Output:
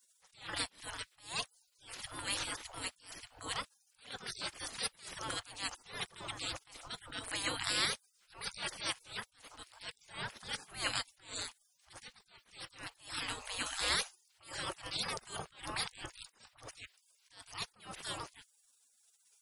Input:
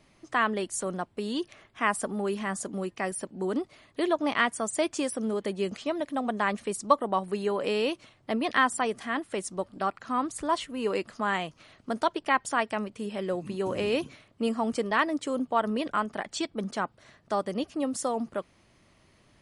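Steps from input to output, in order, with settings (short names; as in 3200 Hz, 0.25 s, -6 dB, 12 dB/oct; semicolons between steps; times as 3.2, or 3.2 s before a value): spectral gate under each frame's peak -30 dB weak; attack slew limiter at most 150 dB/s; gain +14 dB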